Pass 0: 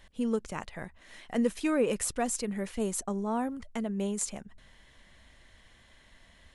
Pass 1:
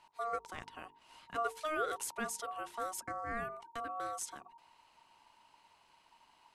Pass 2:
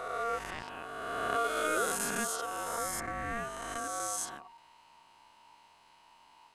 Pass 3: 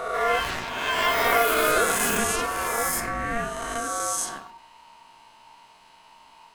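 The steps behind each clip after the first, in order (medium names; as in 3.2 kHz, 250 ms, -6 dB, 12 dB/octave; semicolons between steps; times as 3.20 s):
ring modulator 930 Hz; hum notches 50/100/150/200/250/300/350/400/450 Hz; trim -5.5 dB
reverse spectral sustain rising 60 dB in 2.19 s; trim +1 dB
on a send at -6.5 dB: reverberation, pre-delay 4 ms; on the sum: ever faster or slower copies 141 ms, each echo +7 st, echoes 2; trim +7.5 dB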